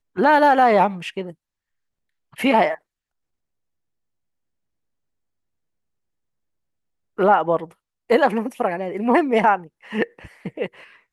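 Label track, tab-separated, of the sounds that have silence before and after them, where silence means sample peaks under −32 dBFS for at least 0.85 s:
2.380000	2.750000	sound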